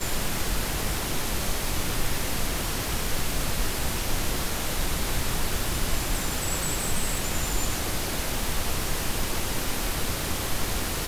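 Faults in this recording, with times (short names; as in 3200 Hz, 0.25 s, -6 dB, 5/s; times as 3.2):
crackle 580/s -32 dBFS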